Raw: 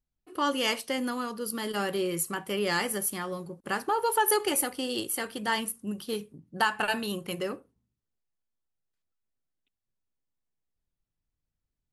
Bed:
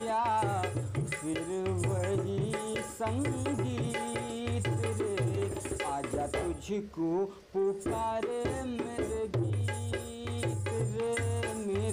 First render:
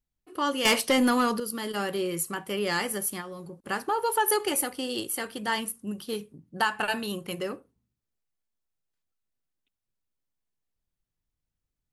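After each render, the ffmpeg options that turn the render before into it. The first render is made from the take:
-filter_complex "[0:a]asettb=1/sr,asplit=3[a][b][c];[a]atrim=end=0.654[d];[b]atrim=start=0.65:end=1.4,asetpts=PTS-STARTPTS,afade=t=in:d=0.004:c=qsin,afade=t=out:st=0.746:d=0.004:c=qsin,aeval=exprs='0.158*sin(PI/2*2*val(0)/0.158)':c=same[e];[c]atrim=start=1.396[f];[d][e]acrossfade=d=0.004:c1=hsin:c2=qsin[g];[g][f]acrossfade=d=0.004:c1=qsin:c2=hsin,asplit=3[h][i][j];[h]afade=t=out:st=3.2:d=0.02[k];[i]acompressor=threshold=-36dB:ratio=6:attack=3.2:release=140:knee=1:detection=peak,afade=t=in:st=3.2:d=0.02,afade=t=out:st=3.67:d=0.02[l];[j]afade=t=in:st=3.67:d=0.02[m];[k][l][m]amix=inputs=3:normalize=0"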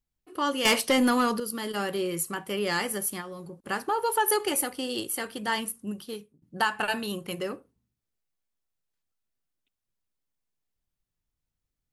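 -filter_complex "[0:a]asplit=2[a][b];[a]atrim=end=6.42,asetpts=PTS-STARTPTS,afade=t=out:st=5.89:d=0.53:silence=0.0707946[c];[b]atrim=start=6.42,asetpts=PTS-STARTPTS,afade=t=in:d=0.004:c=hsin:silence=0.0707946[d];[c][d]concat=n=2:v=0:a=1"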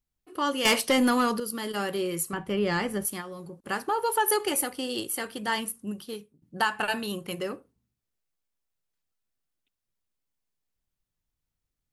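-filter_complex "[0:a]asettb=1/sr,asplit=3[a][b][c];[a]atrim=end=2.334[d];[b]atrim=start=2.33:end=3.05,asetpts=PTS-STARTPTS,afade=t=in:d=0.004:c=qsin,afade=t=out:st=0.716:d=0.004:c=qsin,aemphasis=mode=reproduction:type=bsi[e];[c]atrim=start=3.046[f];[d][e]acrossfade=d=0.004:c1=hsin:c2=qsin[g];[g][f]acrossfade=d=0.004:c1=qsin:c2=hsin"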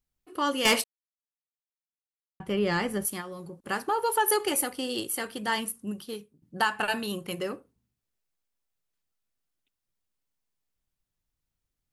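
-filter_complex "[0:a]asplit=3[a][b][c];[a]atrim=end=0.84,asetpts=PTS-STARTPTS,afade=t=out:st=0.836:d=0.004:c=hsin[d];[b]atrim=start=0.84:end=2.4,asetpts=PTS-STARTPTS,volume=0[e];[c]atrim=start=2.4,asetpts=PTS-STARTPTS,afade=t=in:d=0.004:c=hsin[f];[d][e][f]concat=n=3:v=0:a=1"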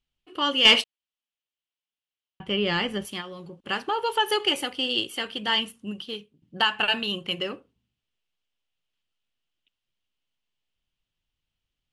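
-af "lowpass=5.7k,equalizer=f=3k:w=2.4:g=13.5"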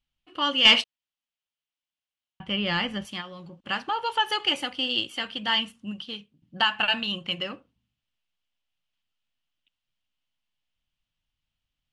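-af "lowpass=6.8k,equalizer=f=410:w=3.6:g=-12"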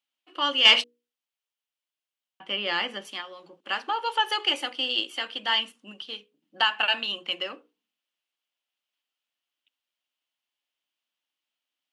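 -af "highpass=f=300:w=0.5412,highpass=f=300:w=1.3066,bandreject=f=60:t=h:w=6,bandreject=f=120:t=h:w=6,bandreject=f=180:t=h:w=6,bandreject=f=240:t=h:w=6,bandreject=f=300:t=h:w=6,bandreject=f=360:t=h:w=6,bandreject=f=420:t=h:w=6,bandreject=f=480:t=h:w=6"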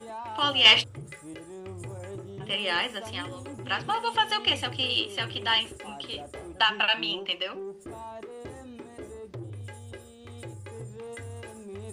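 -filter_complex "[1:a]volume=-8.5dB[a];[0:a][a]amix=inputs=2:normalize=0"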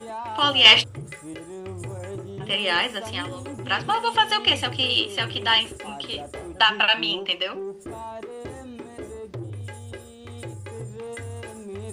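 -af "volume=5dB,alimiter=limit=-1dB:level=0:latency=1"

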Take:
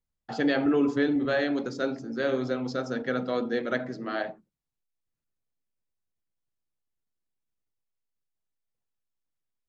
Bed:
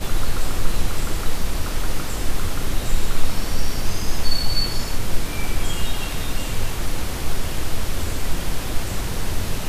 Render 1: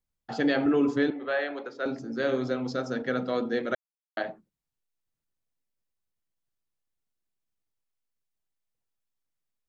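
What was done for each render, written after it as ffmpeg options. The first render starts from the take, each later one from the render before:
-filter_complex "[0:a]asettb=1/sr,asplit=3[a][b][c];[a]atrim=end=1.104[d];[b]atrim=start=1.1:end=1.86,asetpts=PTS-STARTPTS,afade=t=in:d=0.004:c=qsin,afade=t=out:st=0.756:d=0.004:c=qsin,acrossover=split=410 3600:gain=0.0708 1 0.112[e][f][g];[e][f][g]amix=inputs=3:normalize=0[h];[c]atrim=start=1.856[i];[d][h]acrossfade=d=0.004:c1=hsin:c2=qsin[j];[j][i]acrossfade=d=0.004:c1=qsin:c2=hsin,asplit=3[k][l][m];[k]atrim=end=3.75,asetpts=PTS-STARTPTS,afade=t=out:st=3.746:d=0.004:c=hsin[n];[l]atrim=start=3.75:end=4.17,asetpts=PTS-STARTPTS,volume=0[o];[m]atrim=start=4.17,asetpts=PTS-STARTPTS,afade=t=in:d=0.004:c=hsin[p];[n][o][p]concat=n=3:v=0:a=1"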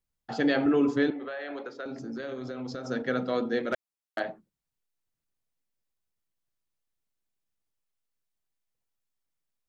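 -filter_complex "[0:a]asettb=1/sr,asplit=3[a][b][c];[a]atrim=end=1.184[d];[b]atrim=start=1.18:end=2.85,asetpts=PTS-STARTPTS,afade=t=in:d=0.004:c=qsin,afade=t=out:st=1.666:d=0.004:c=qsin,acompressor=threshold=-32dB:ratio=12:attack=3.2:release=140:knee=1:detection=peak[e];[c]atrim=start=2.846[f];[d][e]acrossfade=d=0.004:c1=hsin:c2=qsin[g];[g][f]acrossfade=d=0.004:c1=qsin:c2=hsin,asettb=1/sr,asplit=3[h][i][j];[h]atrim=end=3.634[k];[i]atrim=start=3.63:end=4.21,asetpts=PTS-STARTPTS,afade=t=in:d=0.004:c=qsin,afade=t=out:st=0.576:d=0.004:c=qsin,volume=19.5dB,asoftclip=hard,volume=-19.5dB[l];[j]atrim=start=4.206[m];[k][l]acrossfade=d=0.004:c1=hsin:c2=qsin[n];[n][m]acrossfade=d=0.004:c1=qsin:c2=hsin"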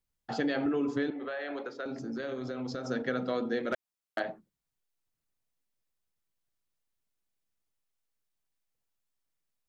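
-af "acompressor=threshold=-27dB:ratio=5"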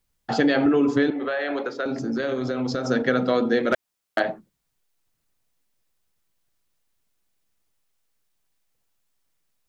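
-af "volume=10.5dB"

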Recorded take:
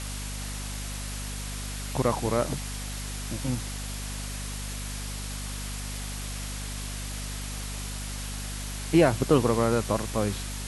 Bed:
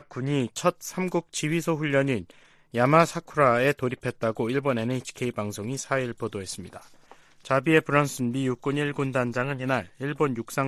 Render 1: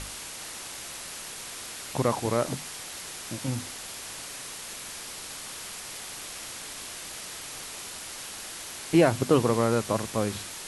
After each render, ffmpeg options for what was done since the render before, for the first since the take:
-af "bandreject=f=50:t=h:w=6,bandreject=f=100:t=h:w=6,bandreject=f=150:t=h:w=6,bandreject=f=200:t=h:w=6,bandreject=f=250:t=h:w=6"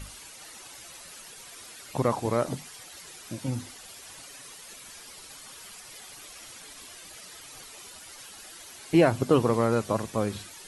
-af "afftdn=nr=11:nf=-40"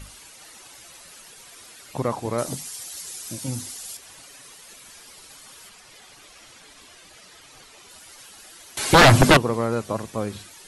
-filter_complex "[0:a]asettb=1/sr,asplit=3[a][b][c];[a]atrim=end=2.384[d];[b]atrim=start=2.38:end=3.97,asetpts=PTS-STARTPTS,afade=t=in:d=0.004:c=qsin,afade=t=out:st=1.586:d=0.004:c=qsin,bass=f=250:g=1,treble=f=4k:g=12[e];[c]atrim=start=3.966[f];[d][e]acrossfade=d=0.004:c1=hsin:c2=qsin[g];[g][f]acrossfade=d=0.004:c1=qsin:c2=hsin,asettb=1/sr,asplit=3[h][i][j];[h]atrim=end=5.694[k];[i]atrim=start=5.69:end=7.9,asetpts=PTS-STARTPTS,afade=t=in:d=0.004:c=qsin,afade=t=out:st=2.206:d=0.004:c=qsin,highshelf=f=8.9k:g=-11.5[l];[j]atrim=start=7.896[m];[k][l]acrossfade=d=0.004:c1=hsin:c2=qsin[n];[n][m]acrossfade=d=0.004:c1=qsin:c2=hsin,asettb=1/sr,asplit=3[o][p][q];[o]atrim=end=8.774[r];[p]atrim=start=8.77:end=9.37,asetpts=PTS-STARTPTS,afade=t=in:d=0.004:c=qsin,afade=t=out:st=0.596:d=0.004:c=qsin,aeval=exprs='0.422*sin(PI/2*5.62*val(0)/0.422)':c=same[s];[q]atrim=start=9.366[t];[r][s]acrossfade=d=0.004:c1=hsin:c2=qsin[u];[u][t]acrossfade=d=0.004:c1=qsin:c2=hsin"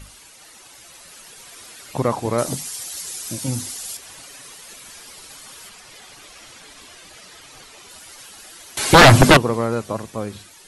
-af "dynaudnorm=f=140:g=17:m=5dB"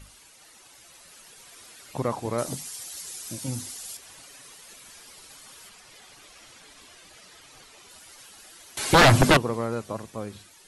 -af "volume=-7dB"

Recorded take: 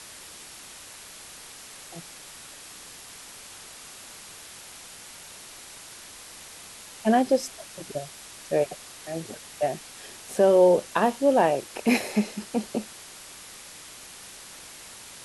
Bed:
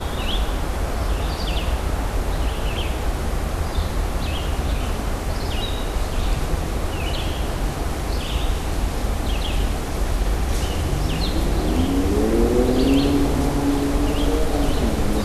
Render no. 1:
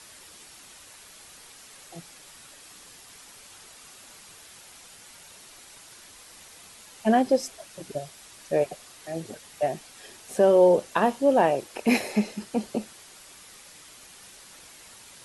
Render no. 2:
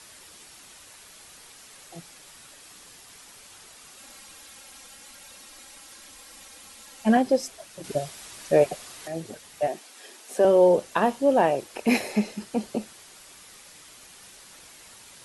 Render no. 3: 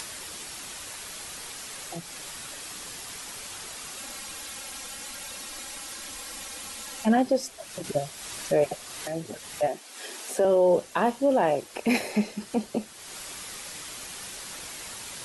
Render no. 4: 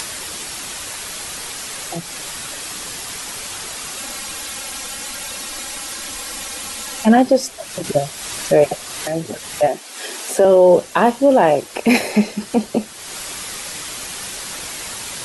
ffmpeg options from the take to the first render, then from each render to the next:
-af "afftdn=nr=6:nf=-45"
-filter_complex "[0:a]asettb=1/sr,asplit=3[a][b][c];[a]atrim=end=3.974[d];[b]atrim=start=3.97:end=7.17,asetpts=PTS-STARTPTS,afade=t=in:d=0.004:c=qsin,afade=t=out:st=3.196:d=0.004:c=qsin,aecho=1:1:3.7:0.65,atrim=end_sample=141120[e];[c]atrim=start=7.166[f];[d][e]acrossfade=d=0.004:c1=hsin:c2=qsin[g];[g][f]acrossfade=d=0.004:c1=qsin:c2=hsin,asettb=1/sr,asplit=3[h][i][j];[h]atrim=end=7.844[k];[i]atrim=start=7.84:end=9.08,asetpts=PTS-STARTPTS,afade=t=in:d=0.004:c=qsin,afade=t=out:st=1.236:d=0.004:c=qsin,acontrast=34[l];[j]atrim=start=9.076[m];[k][l]acrossfade=d=0.004:c1=hsin:c2=qsin[n];[n][m]acrossfade=d=0.004:c1=qsin:c2=hsin,asettb=1/sr,asplit=3[o][p][q];[o]atrim=end=9.674[r];[p]atrim=start=9.67:end=10.45,asetpts=PTS-STARTPTS,afade=t=in:d=0.004:c=qsin,afade=t=out:st=0.776:d=0.004:c=qsin,highpass=f=240:w=0.5412,highpass=f=240:w=1.3066[s];[q]atrim=start=10.446[t];[r][s]acrossfade=d=0.004:c1=hsin:c2=qsin[u];[u][t]acrossfade=d=0.004:c1=qsin:c2=hsin"
-af "alimiter=limit=-13.5dB:level=0:latency=1:release=16,acompressor=mode=upward:threshold=-29dB:ratio=2.5"
-af "volume=10dB"

